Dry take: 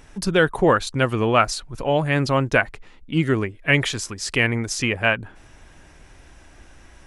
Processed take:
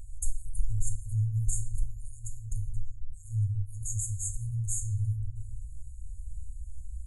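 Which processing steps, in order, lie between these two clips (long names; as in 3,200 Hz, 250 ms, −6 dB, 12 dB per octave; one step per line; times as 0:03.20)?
low-shelf EQ 190 Hz +9.5 dB
convolution reverb RT60 0.90 s, pre-delay 3 ms, DRR 3 dB
brick-wall band-stop 110–6,400 Hz
level −1.5 dB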